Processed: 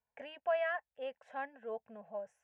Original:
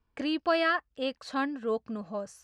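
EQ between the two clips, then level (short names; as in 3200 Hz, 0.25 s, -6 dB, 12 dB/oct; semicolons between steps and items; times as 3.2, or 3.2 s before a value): band-pass 840 Hz, Q 0.69; fixed phaser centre 1200 Hz, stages 6; -4.0 dB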